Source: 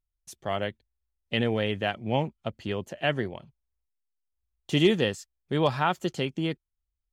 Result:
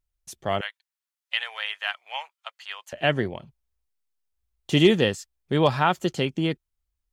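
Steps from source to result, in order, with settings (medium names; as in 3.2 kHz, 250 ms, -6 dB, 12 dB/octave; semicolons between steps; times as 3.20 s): 0.61–2.93 s: inverse Chebyshev high-pass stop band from 290 Hz, stop band 60 dB; trim +4 dB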